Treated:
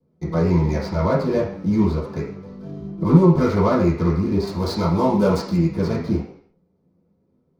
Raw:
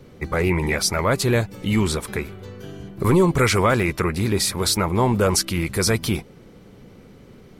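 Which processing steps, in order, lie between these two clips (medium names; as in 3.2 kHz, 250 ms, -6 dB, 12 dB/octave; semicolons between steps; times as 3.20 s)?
median filter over 15 samples; 4.47–5.57 s: treble shelf 3.9 kHz +11 dB; gate with hold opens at -33 dBFS; peaking EQ 5.6 kHz +2.5 dB; reverberation RT60 0.55 s, pre-delay 3 ms, DRR -11 dB; flange 0.37 Hz, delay 4.2 ms, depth 8.3 ms, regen -41%; trim -13 dB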